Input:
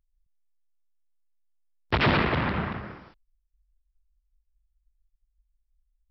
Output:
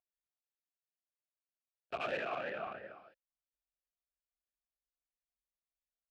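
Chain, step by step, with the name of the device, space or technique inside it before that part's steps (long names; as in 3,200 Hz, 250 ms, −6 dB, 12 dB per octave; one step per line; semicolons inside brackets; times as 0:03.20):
talk box (tube saturation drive 27 dB, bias 0.5; formant filter swept between two vowels a-e 3 Hz)
0:02.20–0:02.67: high-pass filter 110 Hz
level +5 dB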